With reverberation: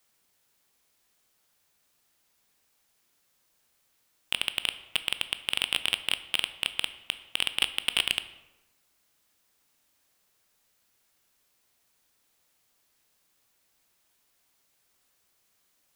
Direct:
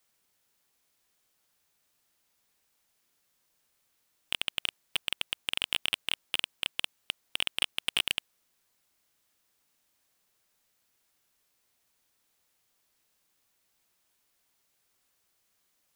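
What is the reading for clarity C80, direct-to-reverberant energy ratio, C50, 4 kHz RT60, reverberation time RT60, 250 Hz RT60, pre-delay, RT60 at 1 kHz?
15.5 dB, 11.0 dB, 13.5 dB, 0.60 s, 1.0 s, 1.1 s, 14 ms, 0.95 s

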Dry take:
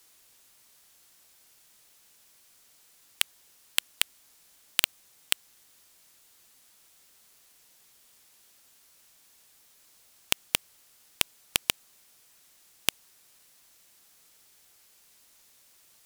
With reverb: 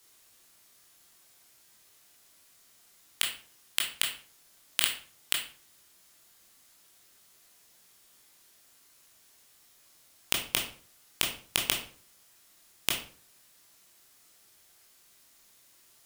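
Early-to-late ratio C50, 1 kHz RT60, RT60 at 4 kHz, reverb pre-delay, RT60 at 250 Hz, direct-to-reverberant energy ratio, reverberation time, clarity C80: 7.0 dB, 0.45 s, 0.35 s, 17 ms, 0.55 s, -1.0 dB, 0.45 s, 11.5 dB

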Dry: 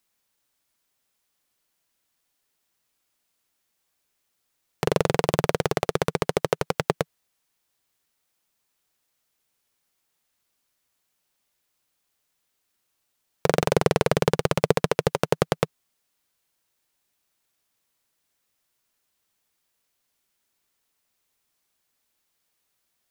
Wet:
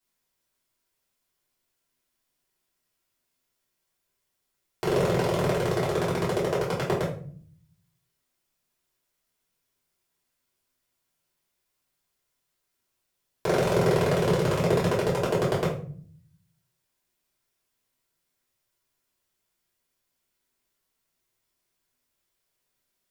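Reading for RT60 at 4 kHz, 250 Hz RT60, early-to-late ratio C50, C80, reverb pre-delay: 0.35 s, 1.0 s, 5.5 dB, 10.5 dB, 3 ms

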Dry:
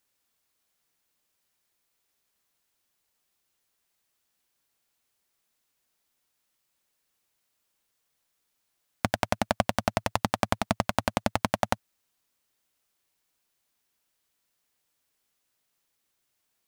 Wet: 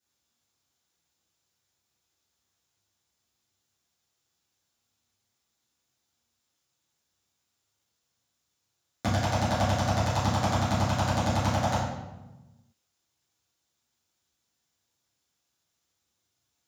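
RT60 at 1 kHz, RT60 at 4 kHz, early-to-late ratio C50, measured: 1.0 s, 0.75 s, 1.5 dB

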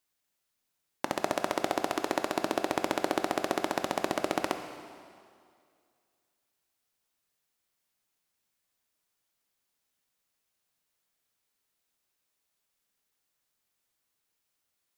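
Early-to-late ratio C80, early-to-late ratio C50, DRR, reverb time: 9.5 dB, 8.5 dB, 7.0 dB, 2.2 s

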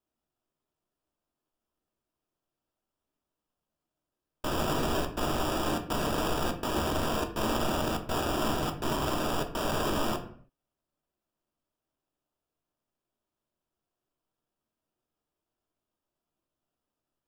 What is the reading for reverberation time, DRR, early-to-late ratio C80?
0.55 s, 4.0 dB, 14.5 dB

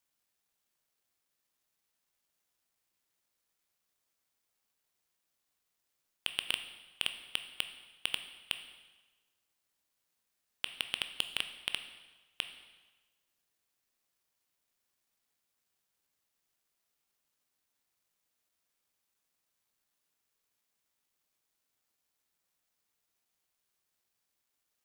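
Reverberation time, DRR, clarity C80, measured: 1.2 s, 8.0 dB, 12.0 dB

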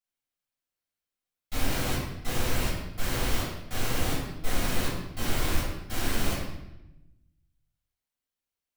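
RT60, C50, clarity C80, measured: 0.90 s, 1.0 dB, 3.5 dB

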